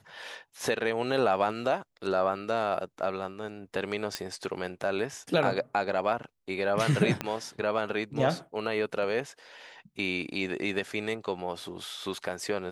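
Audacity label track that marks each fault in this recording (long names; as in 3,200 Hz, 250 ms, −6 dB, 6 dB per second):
4.150000	4.150000	click −14 dBFS
7.210000	7.210000	click −15 dBFS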